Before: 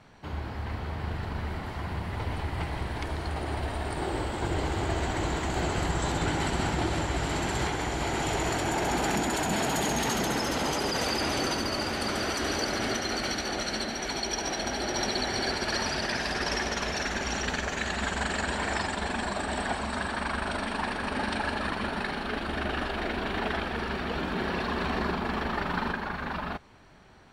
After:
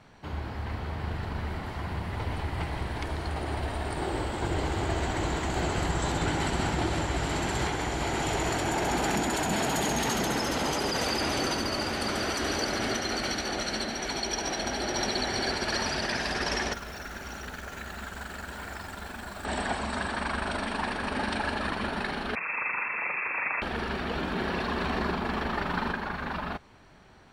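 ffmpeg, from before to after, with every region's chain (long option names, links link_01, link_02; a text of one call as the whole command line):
ffmpeg -i in.wav -filter_complex "[0:a]asettb=1/sr,asplit=3[link_01][link_02][link_03];[link_01]atrim=end=16.734[link_04];[link_02]atrim=start=16.73:end=19.45,asetpts=PTS-STARTPTS,afade=type=in:duration=0.004:curve=qsin,afade=type=out:start_time=2.716:duration=0.004:curve=qsin,equalizer=frequency=1400:width=6:gain=8.5,acrossover=split=130|1700[link_05][link_06][link_07];[link_05]acompressor=threshold=-44dB:ratio=4[link_08];[link_06]acompressor=threshold=-42dB:ratio=4[link_09];[link_07]acompressor=threshold=-47dB:ratio=4[link_10];[link_08][link_09][link_10]amix=inputs=3:normalize=0,acrusher=bits=9:dc=4:mix=0:aa=0.000001[link_11];[link_03]atrim=start=19.446[link_12];[link_04][link_11]acrossfade=duration=0.004:curve1=hsin:curve2=qsin[link_13];[link_13][link_12]acrossfade=duration=0.004:curve1=qsin:curve2=hsin,asettb=1/sr,asplit=3[link_14][link_15][link_16];[link_14]atrim=end=22.354[link_17];[link_15]atrim=start=22.35:end=23.62,asetpts=PTS-STARTPTS,afade=type=in:duration=0.004:curve=qsin,afade=type=out:start_time=1.266:duration=0.004:curve=qsin,lowpass=frequency=2300:width_type=q:width=0.5098,lowpass=frequency=2300:width_type=q:width=0.6013,lowpass=frequency=2300:width_type=q:width=0.9,lowpass=frequency=2300:width_type=q:width=2.563,afreqshift=-2700,highpass=frequency=110:width=0.5412,highpass=frequency=110:width=1.3066[link_18];[link_16]atrim=start=23.616[link_19];[link_17][link_18]acrossfade=duration=0.004:curve1=hsin:curve2=qsin[link_20];[link_20][link_19]acrossfade=duration=0.004:curve1=qsin:curve2=hsin" out.wav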